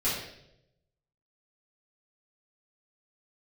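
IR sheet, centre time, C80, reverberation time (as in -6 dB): 56 ms, 5.0 dB, 0.80 s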